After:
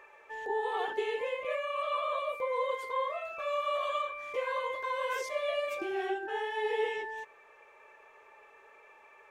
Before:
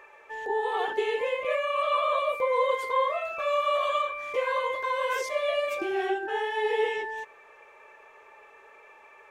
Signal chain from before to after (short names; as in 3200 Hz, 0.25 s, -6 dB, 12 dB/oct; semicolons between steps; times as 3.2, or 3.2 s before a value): vocal rider within 3 dB 2 s; gain -6 dB